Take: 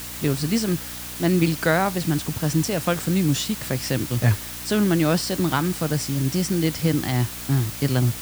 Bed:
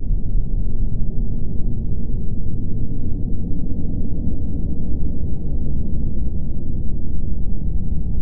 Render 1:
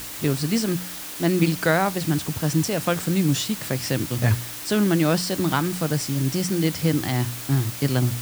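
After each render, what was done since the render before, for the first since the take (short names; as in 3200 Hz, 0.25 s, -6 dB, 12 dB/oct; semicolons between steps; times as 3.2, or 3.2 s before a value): de-hum 60 Hz, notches 4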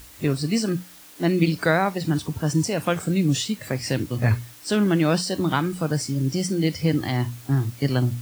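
noise print and reduce 12 dB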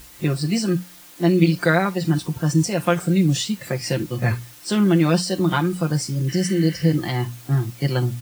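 6.31–6.88 spectral repair 1100–4100 Hz after; comb 5.7 ms, depth 67%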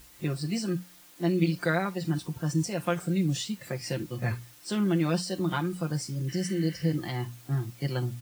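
gain -9 dB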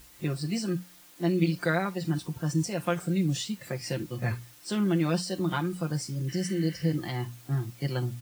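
nothing audible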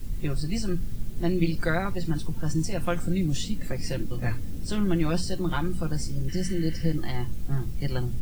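add bed -12 dB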